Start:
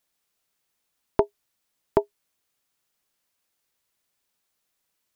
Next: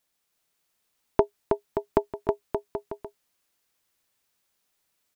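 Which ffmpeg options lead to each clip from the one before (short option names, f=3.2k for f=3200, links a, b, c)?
-af "aecho=1:1:320|576|780.8|944.6|1076:0.631|0.398|0.251|0.158|0.1"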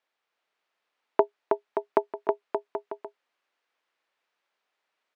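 -af "highpass=460,lowpass=2.6k,volume=3dB"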